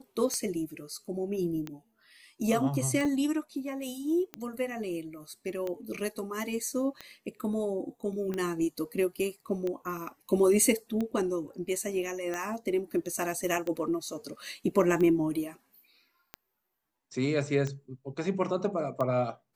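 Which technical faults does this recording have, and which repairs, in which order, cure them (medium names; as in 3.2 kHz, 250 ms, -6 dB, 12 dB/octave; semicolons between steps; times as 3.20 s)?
tick 45 rpm -21 dBFS
3.05 s: dropout 2.4 ms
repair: de-click; interpolate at 3.05 s, 2.4 ms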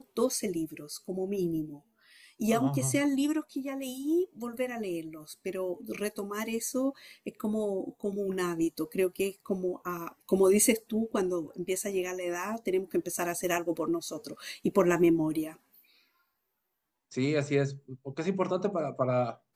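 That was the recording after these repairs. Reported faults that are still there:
nothing left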